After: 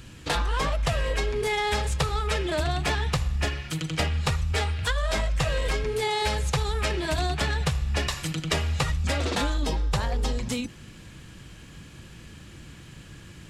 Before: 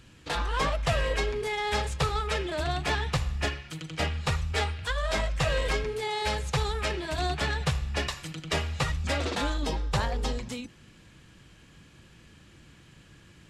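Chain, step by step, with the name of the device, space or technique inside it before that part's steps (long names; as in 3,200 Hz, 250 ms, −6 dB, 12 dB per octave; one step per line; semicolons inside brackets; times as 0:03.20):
ASMR close-microphone chain (low-shelf EQ 200 Hz +4 dB; downward compressor, threshold −29 dBFS, peak gain reduction 9.5 dB; high-shelf EQ 8,500 Hz +6.5 dB)
level +6.5 dB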